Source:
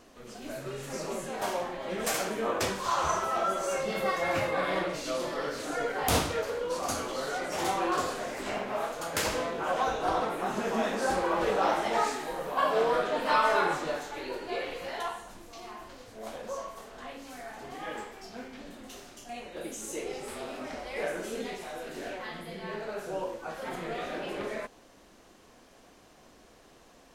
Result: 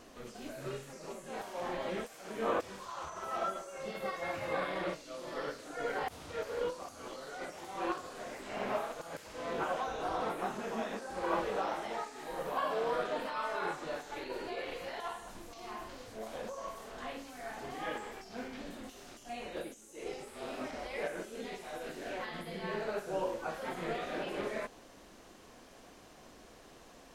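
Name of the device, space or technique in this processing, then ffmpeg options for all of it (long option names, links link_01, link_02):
de-esser from a sidechain: -filter_complex "[0:a]asplit=2[link_01][link_02];[link_02]highpass=frequency=4300:width=0.5412,highpass=frequency=4300:width=1.3066,apad=whole_len=1197109[link_03];[link_01][link_03]sidechaincompress=threshold=-54dB:ratio=20:attack=0.95:release=54,volume=1dB"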